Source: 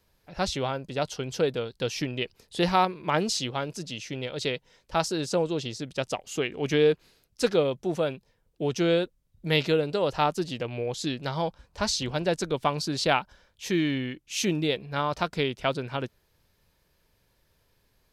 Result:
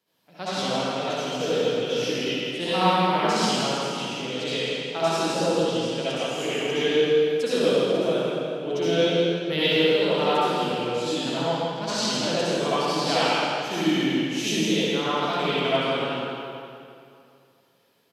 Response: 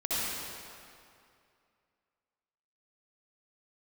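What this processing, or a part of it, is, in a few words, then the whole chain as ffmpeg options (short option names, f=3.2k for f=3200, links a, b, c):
PA in a hall: -filter_complex "[0:a]highpass=f=150:w=0.5412,highpass=f=150:w=1.3066,equalizer=f=3.1k:t=o:w=0.32:g=5.5,aecho=1:1:163:0.447[a];[1:a]atrim=start_sample=2205[b];[a][b]afir=irnorm=-1:irlink=0,volume=-6dB"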